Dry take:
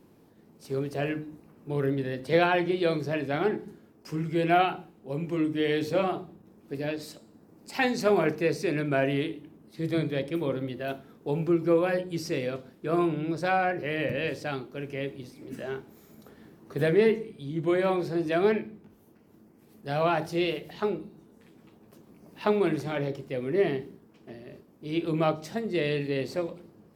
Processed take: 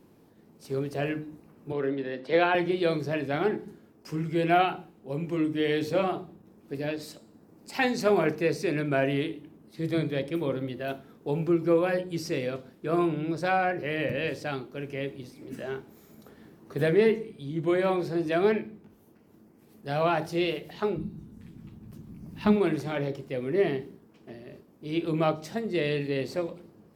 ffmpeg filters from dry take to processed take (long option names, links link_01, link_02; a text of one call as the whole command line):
ffmpeg -i in.wav -filter_complex "[0:a]asettb=1/sr,asplit=3[link_01][link_02][link_03];[link_01]atrim=end=1.724[link_04];[link_02]atrim=start=1.72:end=2.55,asetpts=PTS-STARTPTS,afade=type=in:duration=0.004:curve=qsin,afade=type=out:start_time=0.826:duration=0.004:curve=qsin,acrossover=split=200 5100:gain=0.126 1 0.112[link_05][link_06][link_07];[link_05][link_06][link_07]amix=inputs=3:normalize=0[link_08];[link_03]atrim=start=2.546[link_09];[link_04][link_08]acrossfade=duration=0.004:curve1=hsin:curve2=qsin[link_10];[link_10][link_09]acrossfade=duration=0.004:curve1=qsin:curve2=hsin,asplit=3[link_11][link_12][link_13];[link_11]afade=type=out:start_time=20.96:duration=0.02[link_14];[link_12]asubboost=boost=9.5:cutoff=160,afade=type=in:start_time=20.96:duration=0.02,afade=type=out:start_time=22.55:duration=0.02[link_15];[link_13]afade=type=in:start_time=22.55:duration=0.02[link_16];[link_14][link_15][link_16]amix=inputs=3:normalize=0" out.wav